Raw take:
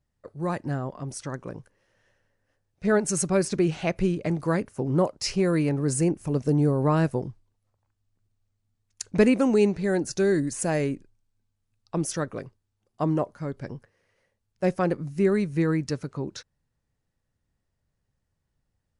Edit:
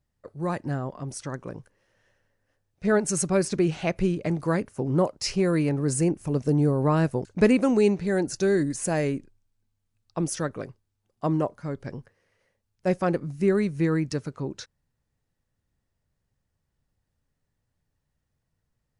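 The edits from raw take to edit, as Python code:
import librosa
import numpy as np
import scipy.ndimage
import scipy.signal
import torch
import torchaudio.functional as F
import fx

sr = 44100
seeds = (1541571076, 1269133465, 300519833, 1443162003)

y = fx.edit(x, sr, fx.cut(start_s=7.25, length_s=1.77), tone=tone)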